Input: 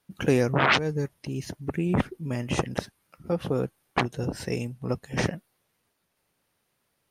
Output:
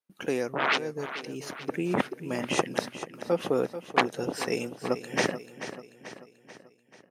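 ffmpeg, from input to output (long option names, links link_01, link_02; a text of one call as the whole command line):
ffmpeg -i in.wav -filter_complex "[0:a]highpass=290,agate=range=-14dB:threshold=-57dB:ratio=16:detection=peak,dynaudnorm=framelen=400:gausssize=7:maxgain=11.5dB,asplit=2[link_01][link_02];[link_02]aecho=0:1:437|874|1311|1748|2185:0.251|0.131|0.0679|0.0353|0.0184[link_03];[link_01][link_03]amix=inputs=2:normalize=0,volume=-5dB" out.wav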